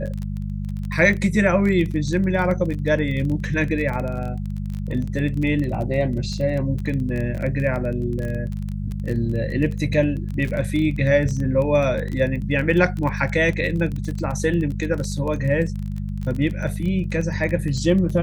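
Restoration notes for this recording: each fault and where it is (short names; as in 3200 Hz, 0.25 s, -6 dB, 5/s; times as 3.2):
crackle 23/s -26 dBFS
hum 50 Hz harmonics 4 -27 dBFS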